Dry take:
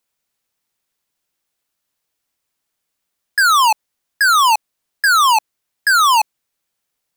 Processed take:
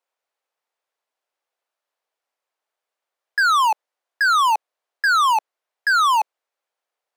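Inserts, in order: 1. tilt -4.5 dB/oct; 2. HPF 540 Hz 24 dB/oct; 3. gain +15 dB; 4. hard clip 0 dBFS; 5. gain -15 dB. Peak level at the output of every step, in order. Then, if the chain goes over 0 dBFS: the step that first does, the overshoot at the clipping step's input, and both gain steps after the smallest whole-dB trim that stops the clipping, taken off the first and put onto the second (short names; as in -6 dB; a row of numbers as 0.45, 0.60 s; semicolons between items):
-6.5, -7.5, +7.5, 0.0, -15.0 dBFS; step 3, 7.5 dB; step 3 +7 dB, step 5 -7 dB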